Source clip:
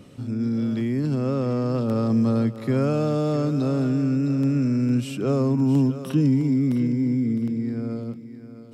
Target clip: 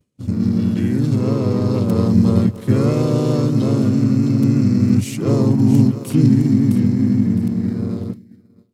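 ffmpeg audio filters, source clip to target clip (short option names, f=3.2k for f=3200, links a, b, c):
-filter_complex "[0:a]aemphasis=mode=production:type=75kf,asplit=4[a][b][c][d];[b]asetrate=35002,aresample=44100,atempo=1.25992,volume=-4dB[e];[c]asetrate=37084,aresample=44100,atempo=1.18921,volume=-3dB[f];[d]asetrate=55563,aresample=44100,atempo=0.793701,volume=-17dB[g];[a][e][f][g]amix=inputs=4:normalize=0,lowshelf=f=490:g=8.5,agate=range=-33dB:threshold=-21dB:ratio=3:detection=peak,asplit=2[h][i];[i]aeval=exprs='sgn(val(0))*max(abs(val(0))-0.0531,0)':c=same,volume=-5.5dB[j];[h][j]amix=inputs=2:normalize=0,volume=-6.5dB"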